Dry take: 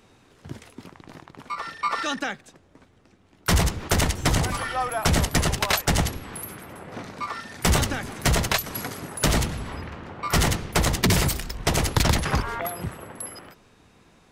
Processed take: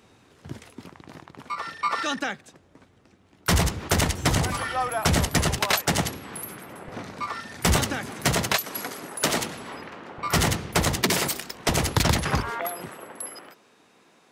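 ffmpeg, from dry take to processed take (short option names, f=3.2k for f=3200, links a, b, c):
-af "asetnsamples=n=441:p=0,asendcmd='5.58 highpass f 130;6.88 highpass f 51;7.77 highpass f 120;8.56 highpass f 260;10.18 highpass f 77;11.03 highpass f 250;11.69 highpass f 67;12.5 highpass f 270',highpass=58"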